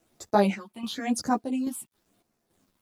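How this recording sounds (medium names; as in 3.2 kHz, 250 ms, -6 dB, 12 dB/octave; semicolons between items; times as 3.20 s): phasing stages 6, 0.96 Hz, lowest notch 450–3000 Hz; a quantiser's noise floor 12-bit, dither none; chopped level 1.2 Hz, depth 60%, duty 65%; a shimmering, thickened sound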